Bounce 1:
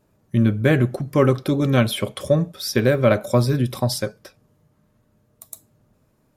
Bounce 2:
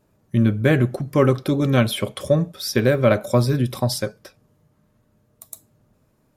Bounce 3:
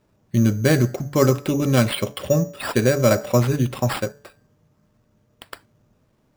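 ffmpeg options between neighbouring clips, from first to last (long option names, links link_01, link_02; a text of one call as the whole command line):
ffmpeg -i in.wav -af anull out.wav
ffmpeg -i in.wav -af "bandreject=frequency=143.6:width_type=h:width=4,bandreject=frequency=287.2:width_type=h:width=4,bandreject=frequency=430.8:width_type=h:width=4,bandreject=frequency=574.4:width_type=h:width=4,bandreject=frequency=718:width_type=h:width=4,bandreject=frequency=861.6:width_type=h:width=4,bandreject=frequency=1005.2:width_type=h:width=4,bandreject=frequency=1148.8:width_type=h:width=4,bandreject=frequency=1292.4:width_type=h:width=4,bandreject=frequency=1436:width_type=h:width=4,bandreject=frequency=1579.6:width_type=h:width=4,bandreject=frequency=1723.2:width_type=h:width=4,bandreject=frequency=1866.8:width_type=h:width=4,bandreject=frequency=2010.4:width_type=h:width=4,acrusher=samples=7:mix=1:aa=0.000001" out.wav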